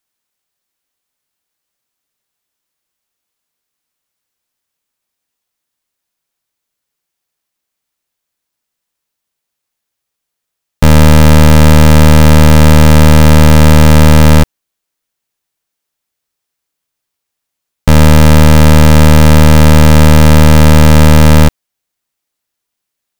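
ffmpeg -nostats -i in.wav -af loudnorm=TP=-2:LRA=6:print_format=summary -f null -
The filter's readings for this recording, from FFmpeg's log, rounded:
Input Integrated:     -5.9 LUFS
Input True Peak:      -0.2 dBTP
Input LRA:             8.4 LU
Input Threshold:     -16.2 LUFS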